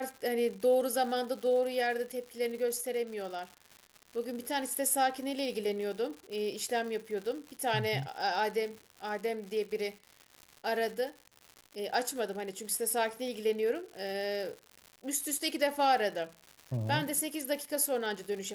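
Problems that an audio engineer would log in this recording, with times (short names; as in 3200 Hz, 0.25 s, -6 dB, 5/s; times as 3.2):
crackle 180/s -40 dBFS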